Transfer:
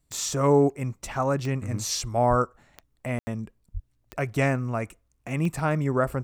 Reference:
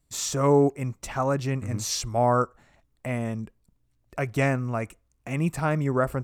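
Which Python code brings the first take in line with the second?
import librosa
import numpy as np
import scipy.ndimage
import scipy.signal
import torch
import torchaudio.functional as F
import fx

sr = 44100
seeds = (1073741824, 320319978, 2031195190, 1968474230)

y = fx.fix_declick_ar(x, sr, threshold=10.0)
y = fx.highpass(y, sr, hz=140.0, slope=24, at=(2.29, 2.41), fade=0.02)
y = fx.highpass(y, sr, hz=140.0, slope=24, at=(3.73, 3.85), fade=0.02)
y = fx.fix_ambience(y, sr, seeds[0], print_start_s=4.82, print_end_s=5.32, start_s=3.19, end_s=3.27)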